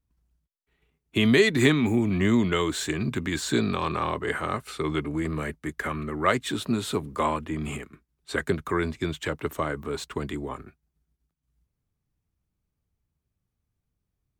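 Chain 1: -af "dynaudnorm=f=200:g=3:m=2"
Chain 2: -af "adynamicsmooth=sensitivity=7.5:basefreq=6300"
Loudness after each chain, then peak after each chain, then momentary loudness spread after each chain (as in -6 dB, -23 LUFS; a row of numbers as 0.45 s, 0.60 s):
-21.0 LUFS, -26.5 LUFS; -3.0 dBFS, -8.0 dBFS; 10 LU, 12 LU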